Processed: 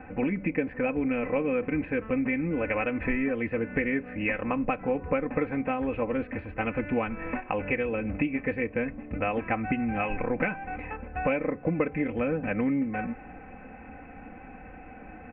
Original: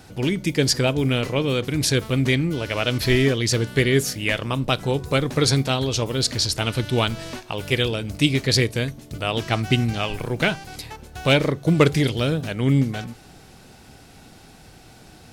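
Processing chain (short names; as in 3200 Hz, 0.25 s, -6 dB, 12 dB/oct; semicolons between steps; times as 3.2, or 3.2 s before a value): comb 3.9 ms, depth 81%; compressor, threshold -25 dBFS, peak gain reduction 16 dB; rippled Chebyshev low-pass 2600 Hz, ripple 3 dB; gain +2.5 dB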